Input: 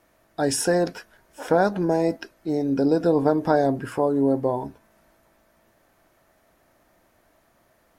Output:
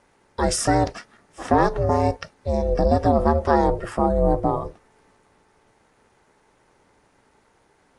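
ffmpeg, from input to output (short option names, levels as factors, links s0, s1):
-af "aeval=exprs='val(0)*sin(2*PI*230*n/s)':c=same,acontrast=25" -ar 22050 -c:a aac -b:a 64k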